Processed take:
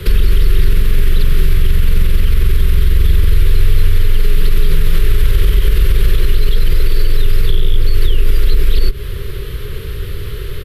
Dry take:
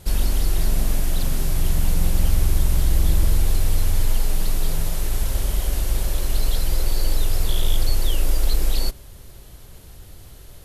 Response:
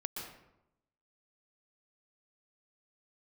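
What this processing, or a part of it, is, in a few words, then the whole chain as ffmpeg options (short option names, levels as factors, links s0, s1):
mastering chain: -filter_complex "[0:a]firequalizer=gain_entry='entry(130,0);entry(190,-5);entry(280,-11);entry(410,8);entry(710,-24);entry(1100,-5);entry(1800,0);entry(3300,-1);entry(6500,-19);entry(13000,-9)':delay=0.05:min_phase=1,equalizer=f=1300:t=o:w=0.77:g=2.5,acrossover=split=100|320|1100[s0][s1][s2][s3];[s0]acompressor=threshold=0.158:ratio=4[s4];[s1]acompressor=threshold=0.0141:ratio=4[s5];[s2]acompressor=threshold=0.00398:ratio=4[s6];[s3]acompressor=threshold=0.00891:ratio=4[s7];[s4][s5][s6][s7]amix=inputs=4:normalize=0,acompressor=threshold=0.0794:ratio=6,alimiter=level_in=11.9:limit=0.891:release=50:level=0:latency=1,volume=0.891"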